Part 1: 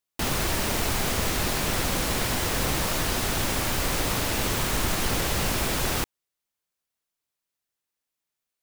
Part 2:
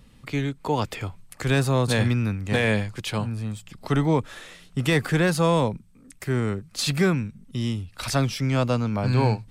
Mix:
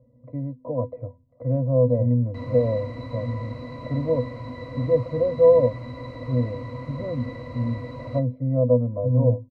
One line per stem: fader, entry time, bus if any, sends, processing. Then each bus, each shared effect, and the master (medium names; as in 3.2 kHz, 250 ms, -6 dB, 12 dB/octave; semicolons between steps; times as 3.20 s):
+2.0 dB, 2.15 s, no send, treble shelf 4.8 kHz -11 dB
+2.5 dB, 0.00 s, no send, resonant low-pass 620 Hz, resonance Q 3.6; de-hum 85.66 Hz, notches 4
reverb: none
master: peaking EQ 640 Hz +6 dB 0.56 oct; pitch-class resonator B, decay 0.11 s